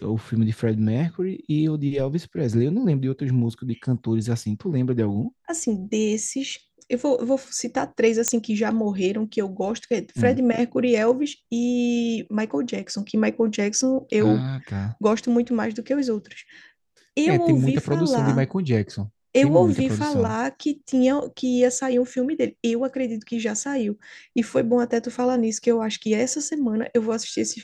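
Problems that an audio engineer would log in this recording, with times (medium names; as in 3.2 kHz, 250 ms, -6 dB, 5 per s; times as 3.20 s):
8.28 s: pop -5 dBFS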